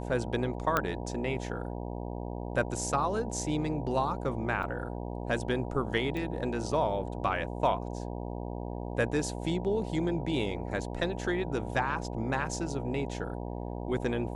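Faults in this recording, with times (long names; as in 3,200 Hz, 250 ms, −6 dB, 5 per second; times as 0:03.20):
mains buzz 60 Hz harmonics 16 −37 dBFS
0:00.77: click −12 dBFS
0:04.63: drop-out 3.5 ms
0:06.17: click −24 dBFS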